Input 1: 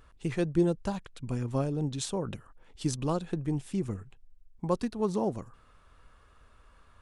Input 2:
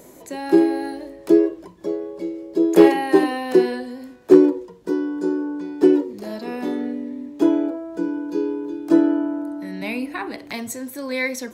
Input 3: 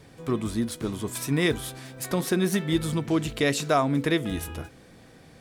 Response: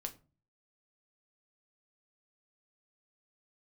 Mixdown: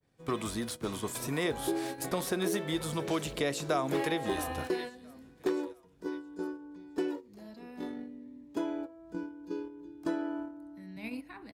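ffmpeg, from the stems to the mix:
-filter_complex "[0:a]asplit=3[s0][s1][s2];[s0]bandpass=f=270:t=q:w=8,volume=1[s3];[s1]bandpass=f=2290:t=q:w=8,volume=0.501[s4];[s2]bandpass=f=3010:t=q:w=8,volume=0.355[s5];[s3][s4][s5]amix=inputs=3:normalize=0,volume=0.282[s6];[1:a]asubboost=boost=5:cutoff=180,acompressor=mode=upward:threshold=0.0447:ratio=2.5,adelay=1150,volume=0.376,asplit=2[s7][s8];[s8]volume=0.119[s9];[2:a]agate=range=0.0224:threshold=0.00891:ratio=3:detection=peak,adynamicequalizer=threshold=0.0141:dfrequency=2500:dqfactor=0.7:tfrequency=2500:tqfactor=0.7:attack=5:release=100:ratio=0.375:range=2:mode=boostabove:tftype=highshelf,volume=1.06,asplit=3[s10][s11][s12];[s11]volume=0.316[s13];[s12]volume=0.0891[s14];[3:a]atrim=start_sample=2205[s15];[s9][s13]amix=inputs=2:normalize=0[s16];[s16][s15]afir=irnorm=-1:irlink=0[s17];[s14]aecho=0:1:669|1338|2007|2676|3345|4014:1|0.45|0.202|0.0911|0.041|0.0185[s18];[s6][s7][s10][s17][s18]amix=inputs=5:normalize=0,agate=range=0.282:threshold=0.0282:ratio=16:detection=peak,acrossover=split=500|1100[s19][s20][s21];[s19]acompressor=threshold=0.0126:ratio=4[s22];[s20]acompressor=threshold=0.0251:ratio=4[s23];[s21]acompressor=threshold=0.0112:ratio=4[s24];[s22][s23][s24]amix=inputs=3:normalize=0"

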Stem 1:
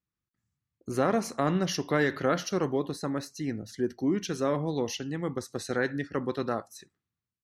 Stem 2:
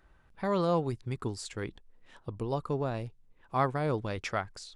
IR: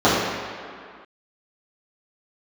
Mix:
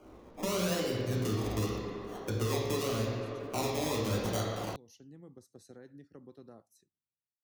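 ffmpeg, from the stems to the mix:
-filter_complex "[0:a]equalizer=f=1900:w=0.47:g=-14,acompressor=threshold=0.0251:ratio=3,volume=0.178[s0];[1:a]equalizer=f=125:t=o:w=1:g=-4,equalizer=f=250:t=o:w=1:g=4,equalizer=f=500:t=o:w=1:g=5,equalizer=f=1000:t=o:w=1:g=-8,equalizer=f=2000:t=o:w=1:g=4,equalizer=f=4000:t=o:w=1:g=8,equalizer=f=8000:t=o:w=1:g=-12,acompressor=threshold=0.0224:ratio=3,acrusher=samples=24:mix=1:aa=0.000001:lfo=1:lforange=14.4:lforate=0.86,volume=1.33,asplit=2[s1][s2];[s2]volume=0.178[s3];[2:a]atrim=start_sample=2205[s4];[s3][s4]afir=irnorm=-1:irlink=0[s5];[s0][s1][s5]amix=inputs=3:normalize=0,lowshelf=f=80:g=-5.5,acrossover=split=120|3000[s6][s7][s8];[s7]acompressor=threshold=0.00631:ratio=2[s9];[s6][s9][s8]amix=inputs=3:normalize=0"

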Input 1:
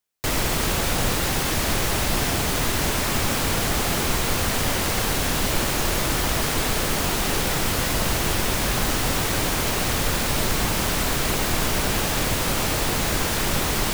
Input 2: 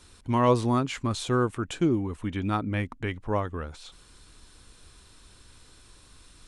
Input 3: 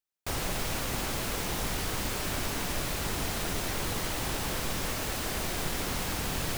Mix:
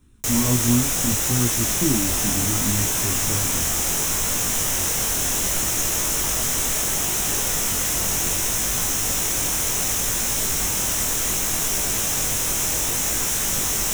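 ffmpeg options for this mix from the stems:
-filter_complex "[0:a]equalizer=f=5900:t=o:w=1.1:g=13,crystalizer=i=1.5:c=0,volume=0.668[s0];[1:a]lowshelf=f=370:t=q:w=1.5:g=12,volume=0.473[s1];[2:a]adelay=1800,volume=0.891[s2];[s0][s1][s2]amix=inputs=3:normalize=0,flanger=delay=17:depth=7.7:speed=0.68,equalizer=f=4600:w=3.3:g=-15"

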